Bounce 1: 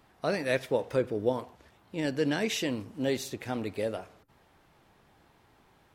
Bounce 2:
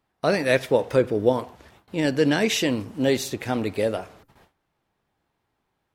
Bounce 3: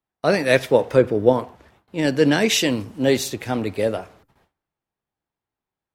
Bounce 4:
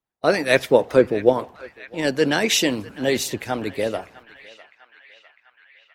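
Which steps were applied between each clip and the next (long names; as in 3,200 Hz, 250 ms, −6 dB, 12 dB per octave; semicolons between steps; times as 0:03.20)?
noise gate with hold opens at −50 dBFS; level +8 dB
multiband upward and downward expander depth 40%; level +3 dB
feedback echo with a band-pass in the loop 652 ms, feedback 71%, band-pass 1,900 Hz, level −16 dB; harmonic and percussive parts rebalanced percussive +9 dB; level −7 dB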